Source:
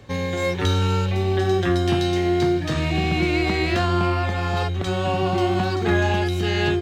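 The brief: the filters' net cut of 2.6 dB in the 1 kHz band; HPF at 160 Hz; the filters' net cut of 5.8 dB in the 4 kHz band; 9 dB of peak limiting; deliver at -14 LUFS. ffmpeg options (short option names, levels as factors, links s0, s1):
-af "highpass=160,equalizer=f=1000:t=o:g=-3.5,equalizer=f=4000:t=o:g=-7.5,volume=4.73,alimiter=limit=0.531:level=0:latency=1"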